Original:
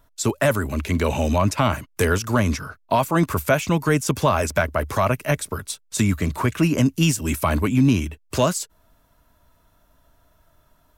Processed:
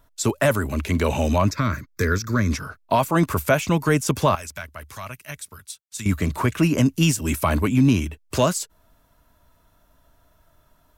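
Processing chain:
0:01.51–0:02.51: phaser with its sweep stopped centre 2,900 Hz, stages 6
0:04.35–0:06.06: guitar amp tone stack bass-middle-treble 5-5-5

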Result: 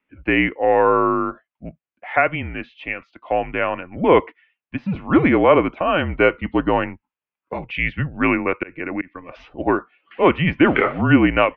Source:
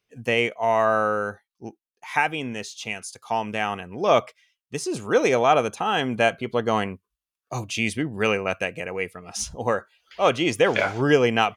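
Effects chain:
0:08.42–0:09.15: volume swells 206 ms
single-sideband voice off tune −170 Hz 260–2,900 Hz
level +5 dB

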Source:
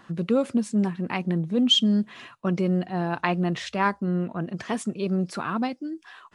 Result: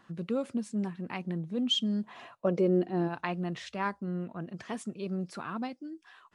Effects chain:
0:02.02–0:03.07: parametric band 940 Hz → 270 Hz +15 dB 1 octave
level −9 dB

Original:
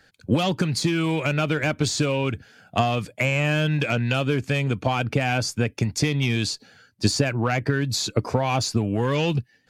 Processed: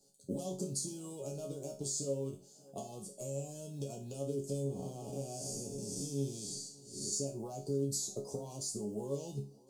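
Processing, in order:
0:04.66–0:07.13: spectrum smeared in time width 244 ms
bass and treble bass −8 dB, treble +1 dB
log-companded quantiser 8 bits
parametric band 8,600 Hz +9 dB 1.1 octaves
downward compressor, threshold −28 dBFS, peak gain reduction 11.5 dB
Chebyshev band-stop filter 480–6,800 Hz, order 2
resonators tuned to a chord C#3 sus4, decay 0.35 s
tape delay 584 ms, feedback 56%, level −22.5 dB, low-pass 4,900 Hz
level +11 dB

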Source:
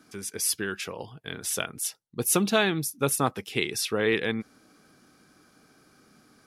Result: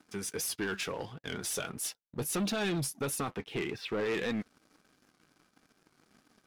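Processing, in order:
0:03.36–0:04.06: high-frequency loss of the air 370 metres
brickwall limiter −19.5 dBFS, peak gain reduction 11 dB
flanger 1.6 Hz, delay 3.1 ms, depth 4.4 ms, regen +68%
leveller curve on the samples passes 3
high-shelf EQ 9,600 Hz −6.5 dB
wow of a warped record 78 rpm, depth 100 cents
level −5.5 dB

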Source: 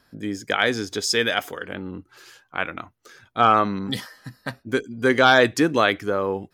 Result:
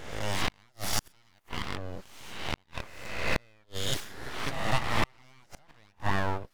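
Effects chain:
peak hold with a rise ahead of every peak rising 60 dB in 1.05 s
full-wave rectification
gate with flip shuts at −8 dBFS, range −39 dB
level −3.5 dB

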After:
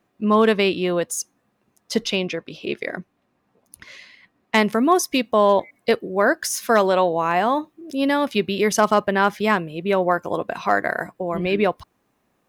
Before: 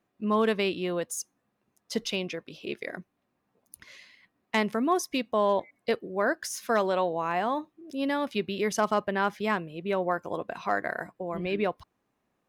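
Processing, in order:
high-shelf EQ 8,900 Hz −2 dB, from 0:02.03 −8.5 dB, from 0:04.55 +4.5 dB
level +8.5 dB

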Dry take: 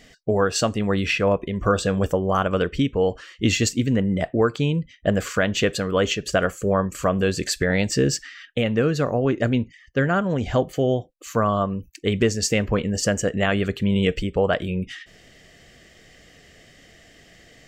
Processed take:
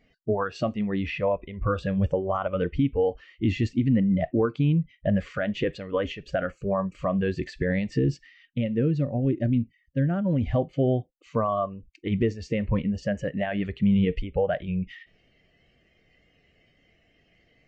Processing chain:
noise reduction from a noise print of the clip's start 13 dB
0:07.98–0:10.24: parametric band 1,200 Hz −7 dB → −13.5 dB 2.4 octaves
brickwall limiter −14.5 dBFS, peak gain reduction 5.5 dB
head-to-tape spacing loss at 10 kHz 41 dB
level +2 dB

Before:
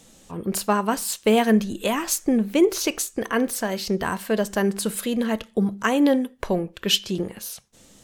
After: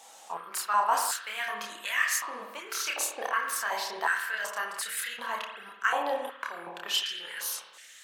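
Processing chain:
reversed playback
downward compressor, threshold −28 dBFS, peak gain reduction 15 dB
reversed playback
multi-voice chorus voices 4, 0.43 Hz, delay 29 ms, depth 1.1 ms
spring reverb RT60 1.2 s, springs 52 ms, chirp 65 ms, DRR 4 dB
high-pass on a step sequencer 2.7 Hz 810–1,800 Hz
level +4 dB

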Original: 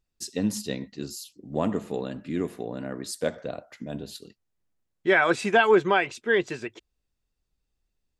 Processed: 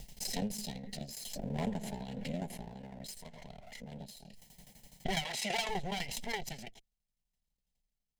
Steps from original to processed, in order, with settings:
lower of the sound and its delayed copy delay 0.97 ms
0:02.67–0:03.96: downward compressor 4 to 1, threshold −36 dBFS, peak gain reduction 10.5 dB
0:05.25–0:05.69: meter weighting curve A
hard clipping −21.5 dBFS, distortion −12 dB
shaped tremolo saw down 12 Hz, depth 85%
phaser with its sweep stopped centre 320 Hz, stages 6
background raised ahead of every attack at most 28 dB per second
level −3 dB

